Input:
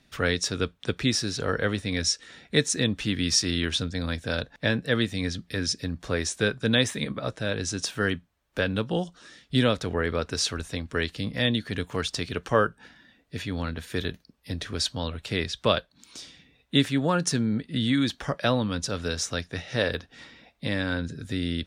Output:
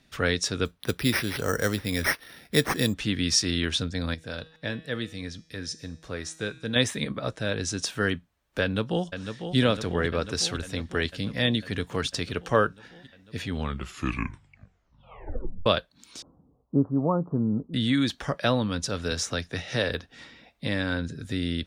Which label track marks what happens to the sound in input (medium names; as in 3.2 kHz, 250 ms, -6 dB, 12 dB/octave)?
0.650000	2.940000	careless resampling rate divided by 6×, down none, up hold
4.140000	6.760000	feedback comb 160 Hz, decay 0.77 s
8.620000	9.560000	echo throw 500 ms, feedback 75%, level -8 dB
13.400000	13.400000	tape stop 2.26 s
16.220000	17.740000	steep low-pass 1.2 kHz 72 dB/octave
19.110000	19.900000	three bands compressed up and down depth 40%